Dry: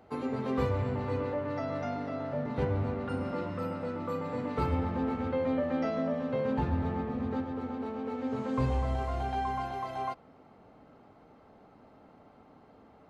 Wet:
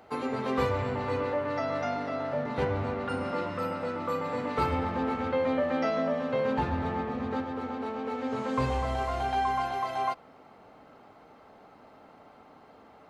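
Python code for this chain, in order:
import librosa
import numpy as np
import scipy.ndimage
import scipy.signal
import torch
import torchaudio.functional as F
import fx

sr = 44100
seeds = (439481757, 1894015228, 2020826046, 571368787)

y = fx.low_shelf(x, sr, hz=420.0, db=-10.5)
y = y * librosa.db_to_amplitude(7.5)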